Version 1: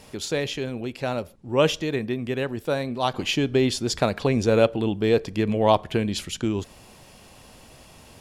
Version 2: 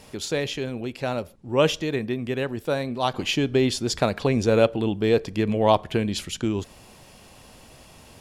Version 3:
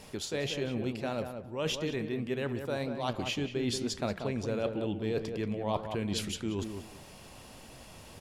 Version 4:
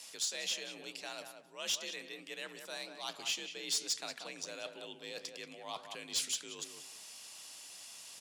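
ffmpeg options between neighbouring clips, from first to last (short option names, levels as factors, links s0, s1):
-af anull
-filter_complex "[0:a]areverse,acompressor=threshold=0.0355:ratio=5,areverse,flanger=delay=4.4:depth=6.8:regen=85:speed=1.7:shape=triangular,asplit=2[s0][s1];[s1]adelay=184,lowpass=f=1700:p=1,volume=0.473,asplit=2[s2][s3];[s3]adelay=184,lowpass=f=1700:p=1,volume=0.22,asplit=2[s4][s5];[s5]adelay=184,lowpass=f=1700:p=1,volume=0.22[s6];[s0][s2][s4][s6]amix=inputs=4:normalize=0,volume=1.33"
-af "afreqshift=52,bandpass=f=7100:t=q:w=0.95:csg=0,asoftclip=type=tanh:threshold=0.0188,volume=2.51"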